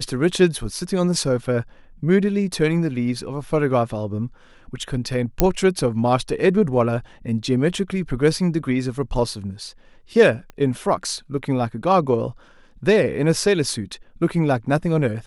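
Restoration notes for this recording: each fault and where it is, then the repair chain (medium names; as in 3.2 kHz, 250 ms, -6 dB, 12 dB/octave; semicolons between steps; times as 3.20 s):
5.40 s: pop -1 dBFS
10.50 s: pop -24 dBFS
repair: de-click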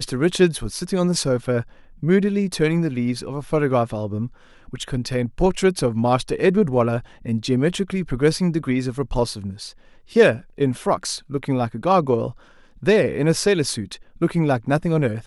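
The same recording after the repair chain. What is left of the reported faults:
10.50 s: pop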